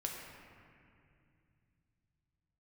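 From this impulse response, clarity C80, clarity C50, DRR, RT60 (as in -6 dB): 2.5 dB, 1.5 dB, -1.0 dB, 2.4 s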